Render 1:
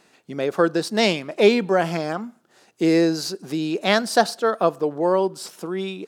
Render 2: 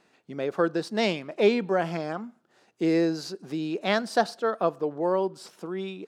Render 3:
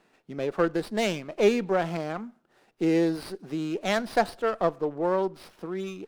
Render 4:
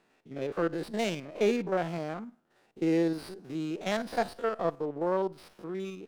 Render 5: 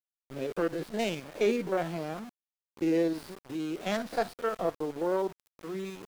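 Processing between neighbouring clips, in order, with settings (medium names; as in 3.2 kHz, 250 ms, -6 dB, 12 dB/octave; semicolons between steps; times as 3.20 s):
low-pass 3.8 kHz 6 dB/octave; trim -5.5 dB
sliding maximum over 5 samples
spectrogram pixelated in time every 50 ms; trim -3 dB
coarse spectral quantiser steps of 15 dB; small samples zeroed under -43 dBFS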